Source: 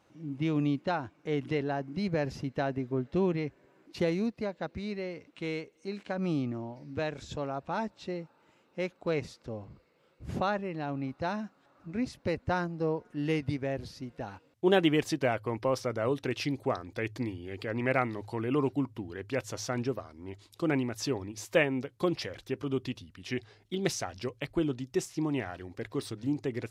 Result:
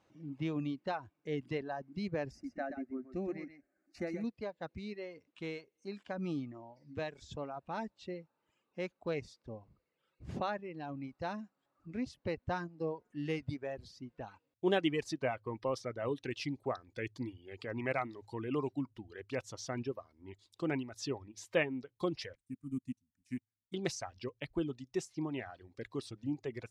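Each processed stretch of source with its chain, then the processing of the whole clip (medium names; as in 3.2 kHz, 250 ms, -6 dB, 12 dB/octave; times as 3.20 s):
2.31–4.24 s: static phaser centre 660 Hz, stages 8 + delay 126 ms -5 dB
22.35–23.74 s: companding laws mixed up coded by A + FFT filter 120 Hz 0 dB, 260 Hz +6 dB, 400 Hz -19 dB, 670 Hz -17 dB, 970 Hz -14 dB, 2.3 kHz -7 dB, 3.2 kHz -18 dB, 5.6 kHz -5 dB, 8.8 kHz +11 dB, 13 kHz +3 dB + upward expansion, over -48 dBFS
whole clip: reverb removal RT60 1.3 s; low-pass 8.2 kHz 12 dB/octave; band-stop 1.4 kHz, Q 18; trim -5.5 dB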